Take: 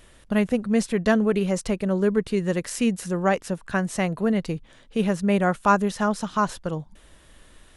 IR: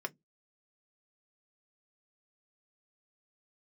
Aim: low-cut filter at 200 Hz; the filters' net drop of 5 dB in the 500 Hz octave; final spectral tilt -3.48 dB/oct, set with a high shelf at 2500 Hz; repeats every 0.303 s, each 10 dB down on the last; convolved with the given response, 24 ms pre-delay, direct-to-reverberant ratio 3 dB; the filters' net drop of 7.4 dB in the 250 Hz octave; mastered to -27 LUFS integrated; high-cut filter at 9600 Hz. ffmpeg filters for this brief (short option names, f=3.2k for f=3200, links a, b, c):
-filter_complex "[0:a]highpass=200,lowpass=9.6k,equalizer=f=250:t=o:g=-5.5,equalizer=f=500:t=o:g=-5,highshelf=f=2.5k:g=8.5,aecho=1:1:303|606|909|1212:0.316|0.101|0.0324|0.0104,asplit=2[a][b];[1:a]atrim=start_sample=2205,adelay=24[c];[b][c]afir=irnorm=-1:irlink=0,volume=-4.5dB[d];[a][d]amix=inputs=2:normalize=0,volume=-2.5dB"